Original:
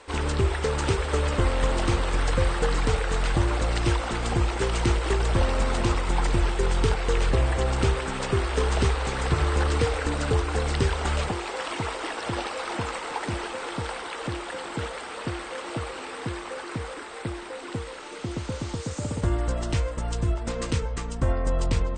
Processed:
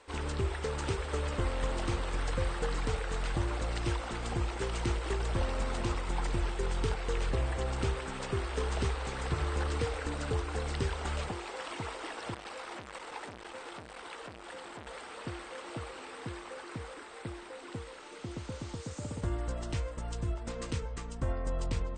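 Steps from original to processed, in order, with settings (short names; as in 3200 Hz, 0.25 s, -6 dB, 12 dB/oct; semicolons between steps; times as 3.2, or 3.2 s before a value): 12.34–14.87 core saturation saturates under 1700 Hz; gain -9 dB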